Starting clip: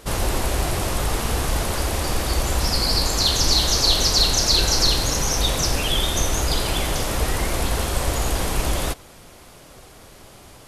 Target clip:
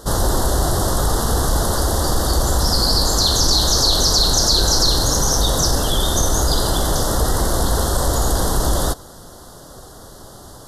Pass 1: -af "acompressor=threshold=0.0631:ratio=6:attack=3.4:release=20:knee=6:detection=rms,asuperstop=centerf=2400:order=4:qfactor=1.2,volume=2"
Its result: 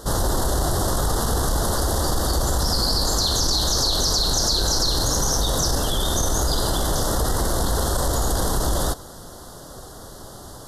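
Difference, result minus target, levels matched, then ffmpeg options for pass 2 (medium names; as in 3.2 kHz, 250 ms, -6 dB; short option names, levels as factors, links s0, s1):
compression: peak gain reduction +6 dB
-af "acompressor=threshold=0.15:ratio=6:attack=3.4:release=20:knee=6:detection=rms,asuperstop=centerf=2400:order=4:qfactor=1.2,volume=2"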